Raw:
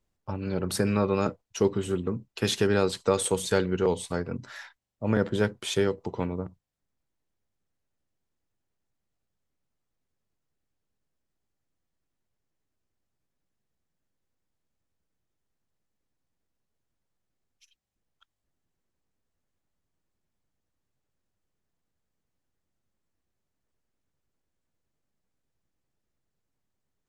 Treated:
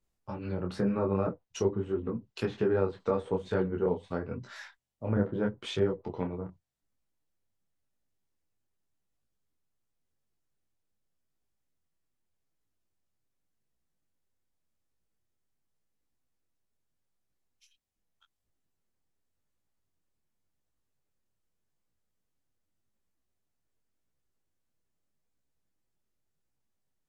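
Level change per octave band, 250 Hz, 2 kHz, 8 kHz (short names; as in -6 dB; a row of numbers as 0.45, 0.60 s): -3.5 dB, -8.5 dB, under -15 dB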